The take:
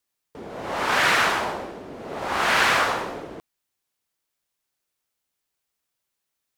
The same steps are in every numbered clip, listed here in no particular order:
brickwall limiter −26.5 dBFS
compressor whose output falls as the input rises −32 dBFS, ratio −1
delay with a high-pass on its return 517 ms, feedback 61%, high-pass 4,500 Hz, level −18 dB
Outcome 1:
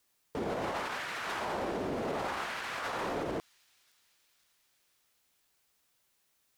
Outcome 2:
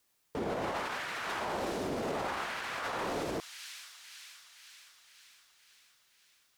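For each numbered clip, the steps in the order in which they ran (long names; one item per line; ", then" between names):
compressor whose output falls as the input rises, then brickwall limiter, then delay with a high-pass on its return
delay with a high-pass on its return, then compressor whose output falls as the input rises, then brickwall limiter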